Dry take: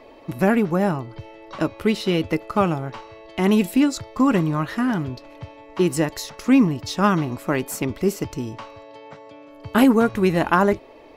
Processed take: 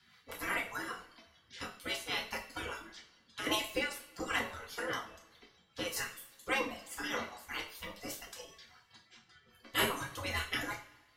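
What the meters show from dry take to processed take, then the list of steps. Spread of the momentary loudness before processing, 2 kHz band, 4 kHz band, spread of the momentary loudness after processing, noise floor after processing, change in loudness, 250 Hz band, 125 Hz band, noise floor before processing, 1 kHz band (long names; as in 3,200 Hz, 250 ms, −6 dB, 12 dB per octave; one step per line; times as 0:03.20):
17 LU, −7.0 dB, −4.5 dB, 17 LU, −68 dBFS, −16.5 dB, −27.0 dB, −25.0 dB, −46 dBFS, −15.5 dB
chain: gate on every frequency bin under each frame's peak −20 dB weak
notch filter 2,500 Hz, Q 11
rotating-speaker cabinet horn 5 Hz
reverb reduction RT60 1.6 s
coupled-rooms reverb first 0.39 s, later 1.7 s, from −21 dB, DRR −2 dB
level −2 dB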